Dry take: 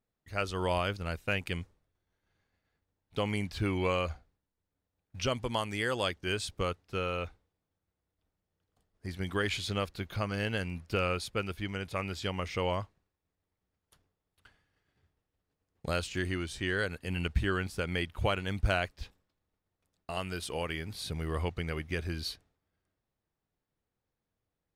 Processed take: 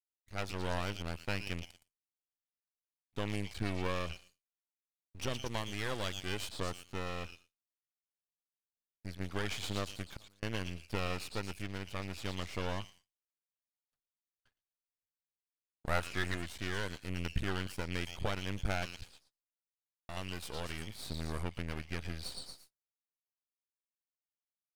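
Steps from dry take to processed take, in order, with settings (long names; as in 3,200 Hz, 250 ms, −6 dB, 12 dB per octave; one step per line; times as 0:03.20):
0:10.02–0:10.43: gate with flip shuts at −28 dBFS, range −27 dB
0:15.87–0:16.35: drawn EQ curve 280 Hz 0 dB, 1,000 Hz +11 dB, 2,100 Hz +8 dB, 4,300 Hz −11 dB, 10,000 Hz +3 dB
echo through a band-pass that steps 116 ms, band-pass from 3,700 Hz, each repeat 0.7 octaves, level −1 dB
downward expander −50 dBFS
0:17.30–0:17.81: high-shelf EQ 3,900 Hz +4 dB
half-wave rectification
level −2 dB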